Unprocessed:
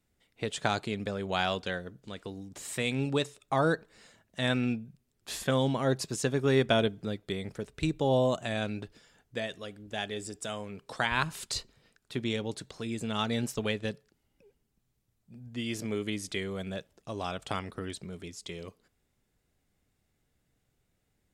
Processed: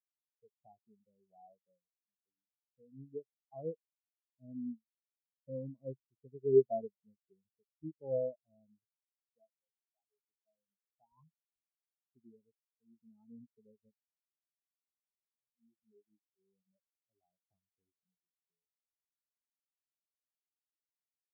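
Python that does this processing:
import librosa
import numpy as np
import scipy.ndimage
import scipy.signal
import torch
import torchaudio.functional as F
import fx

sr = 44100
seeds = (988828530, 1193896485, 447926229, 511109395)

y = fx.peak_eq(x, sr, hz=120.0, db=-10.5, octaves=2.9, at=(9.76, 10.28))
y = fx.transient(y, sr, attack_db=-12, sustain_db=-7, at=(15.36, 16.75))
y = scipy.signal.sosfilt(scipy.signal.butter(4, 1100.0, 'lowpass', fs=sr, output='sos'), y)
y = fx.spectral_expand(y, sr, expansion=4.0)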